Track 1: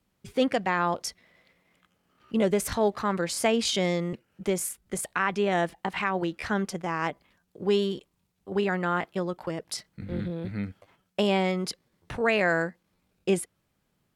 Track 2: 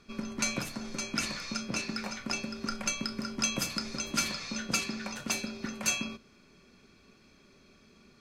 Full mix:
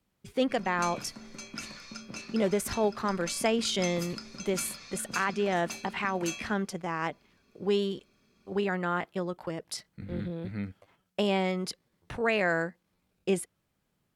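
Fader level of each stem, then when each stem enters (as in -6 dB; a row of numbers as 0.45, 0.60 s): -3.0, -8.0 dB; 0.00, 0.40 s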